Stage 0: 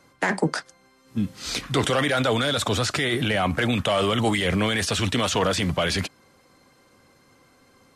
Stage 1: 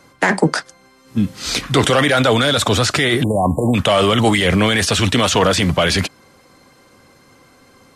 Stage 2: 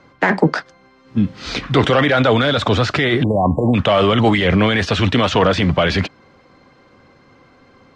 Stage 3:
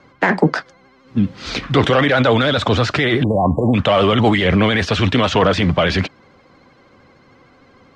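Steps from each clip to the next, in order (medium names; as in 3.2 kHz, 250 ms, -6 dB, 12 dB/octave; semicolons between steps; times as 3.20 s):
spectral selection erased 3.23–3.75 s, 1.1–7 kHz; trim +8 dB
distance through air 200 m; trim +1 dB
vibrato 13 Hz 63 cents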